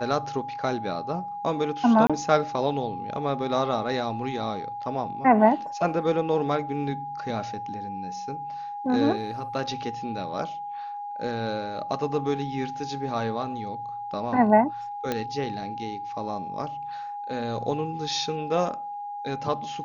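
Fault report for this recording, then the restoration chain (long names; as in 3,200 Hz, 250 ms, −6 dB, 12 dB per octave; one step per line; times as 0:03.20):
whistle 820 Hz −32 dBFS
0:02.07–0:02.10: drop-out 26 ms
0:15.12: click −12 dBFS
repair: click removal
notch filter 820 Hz, Q 30
repair the gap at 0:02.07, 26 ms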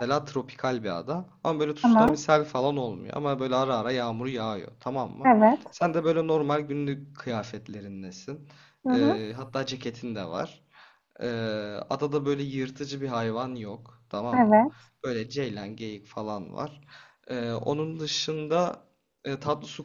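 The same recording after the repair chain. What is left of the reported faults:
none of them is left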